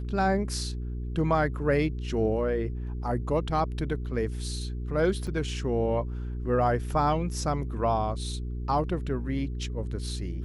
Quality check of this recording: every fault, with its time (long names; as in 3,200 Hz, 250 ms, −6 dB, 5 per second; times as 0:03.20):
mains hum 60 Hz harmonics 7 −33 dBFS
0:05.27–0:05.28: drop-out 5.1 ms